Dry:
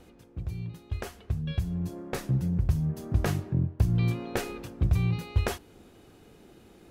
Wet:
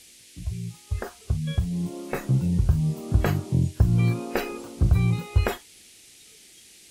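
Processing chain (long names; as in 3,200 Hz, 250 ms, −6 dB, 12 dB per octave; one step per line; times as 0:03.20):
noise in a band 2,000–11,000 Hz −41 dBFS
noise reduction from a noise print of the clip's start 15 dB
level +4.5 dB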